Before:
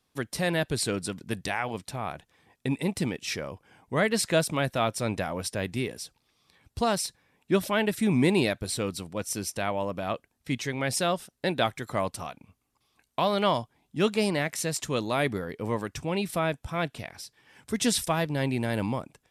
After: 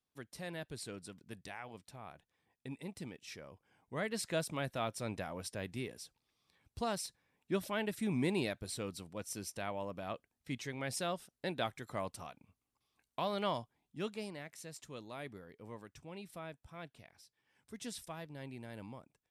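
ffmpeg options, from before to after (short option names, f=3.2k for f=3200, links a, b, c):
-af "volume=-11dB,afade=t=in:st=3.35:d=1.22:silence=0.501187,afade=t=out:st=13.59:d=0.74:silence=0.375837"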